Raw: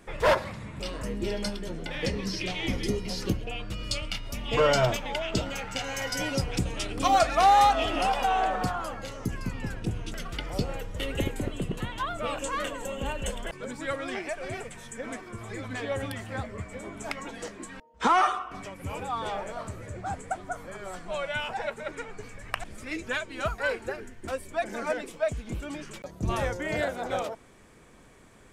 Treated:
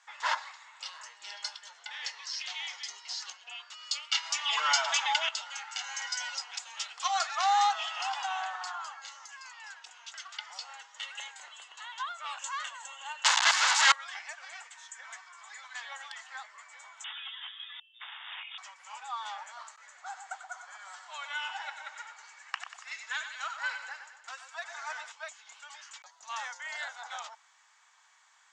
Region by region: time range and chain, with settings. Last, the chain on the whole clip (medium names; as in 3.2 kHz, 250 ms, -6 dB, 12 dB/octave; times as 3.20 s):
4.12–5.29 s: low-pass 10 kHz + comb 6.1 ms, depth 57% + level flattener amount 70%
13.24–13.92 s: square wave that keeps the level + RIAA curve recording + overdrive pedal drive 36 dB, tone 6.7 kHz, clips at -2 dBFS
17.04–18.58 s: integer overflow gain 30 dB + frequency inversion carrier 3.6 kHz
19.76–25.12 s: median filter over 3 samples + gate with hold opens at -33 dBFS, closes at -42 dBFS + two-band feedback delay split 1.2 kHz, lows 123 ms, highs 94 ms, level -8 dB
whole clip: Chebyshev band-pass 840–7100 Hz, order 4; treble shelf 5.2 kHz +9 dB; band-stop 2.4 kHz, Q 13; trim -4 dB